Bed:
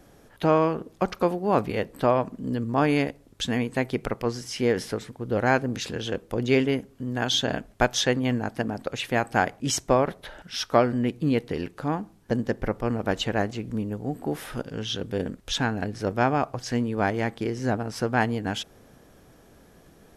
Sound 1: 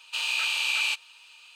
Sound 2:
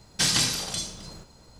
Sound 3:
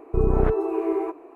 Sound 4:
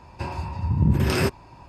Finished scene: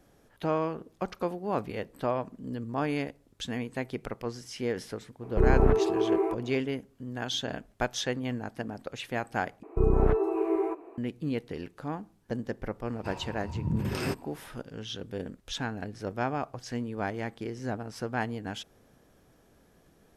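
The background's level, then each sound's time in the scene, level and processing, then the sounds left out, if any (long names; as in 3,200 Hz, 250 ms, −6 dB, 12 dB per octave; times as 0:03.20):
bed −8 dB
0:05.23: mix in 3 −1.5 dB
0:09.63: overwrite with 3 −3 dB
0:12.85: mix in 4 −9.5 dB + parametric band 72 Hz −6 dB
not used: 1, 2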